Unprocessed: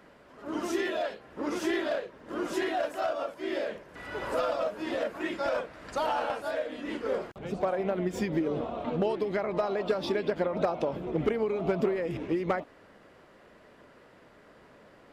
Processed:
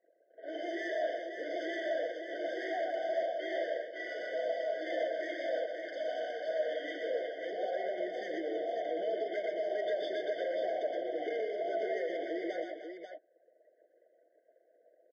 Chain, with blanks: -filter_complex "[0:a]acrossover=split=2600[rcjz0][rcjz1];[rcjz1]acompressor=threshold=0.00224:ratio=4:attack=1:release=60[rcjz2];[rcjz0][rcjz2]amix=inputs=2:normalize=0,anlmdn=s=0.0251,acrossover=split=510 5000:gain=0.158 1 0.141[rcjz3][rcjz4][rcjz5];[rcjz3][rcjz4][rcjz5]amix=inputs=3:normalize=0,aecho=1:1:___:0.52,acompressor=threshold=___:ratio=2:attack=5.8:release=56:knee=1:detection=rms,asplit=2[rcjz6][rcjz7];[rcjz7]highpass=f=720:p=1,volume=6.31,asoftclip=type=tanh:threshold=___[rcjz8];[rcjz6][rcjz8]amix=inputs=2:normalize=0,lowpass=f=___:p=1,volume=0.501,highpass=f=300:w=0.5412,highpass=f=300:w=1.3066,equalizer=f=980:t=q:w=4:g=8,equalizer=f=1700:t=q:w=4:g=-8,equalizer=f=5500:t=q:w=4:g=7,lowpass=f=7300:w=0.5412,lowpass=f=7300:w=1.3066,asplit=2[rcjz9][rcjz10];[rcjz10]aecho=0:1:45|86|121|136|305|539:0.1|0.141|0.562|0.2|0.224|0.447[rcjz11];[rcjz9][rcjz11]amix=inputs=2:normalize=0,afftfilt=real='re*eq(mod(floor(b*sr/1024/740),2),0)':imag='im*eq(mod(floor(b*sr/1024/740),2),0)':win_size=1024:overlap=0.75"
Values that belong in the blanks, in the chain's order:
6.2, 0.01, 0.0501, 2300